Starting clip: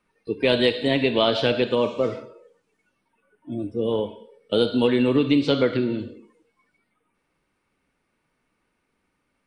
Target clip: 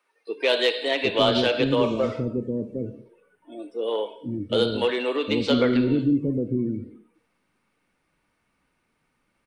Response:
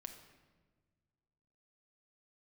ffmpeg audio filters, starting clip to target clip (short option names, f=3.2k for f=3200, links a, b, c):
-filter_complex "[0:a]aeval=exprs='0.531*(cos(1*acos(clip(val(0)/0.531,-1,1)))-cos(1*PI/2))+0.0237*(cos(5*acos(clip(val(0)/0.531,-1,1)))-cos(5*PI/2))':c=same,acrossover=split=380[a][b];[a]adelay=760[c];[c][b]amix=inputs=2:normalize=0"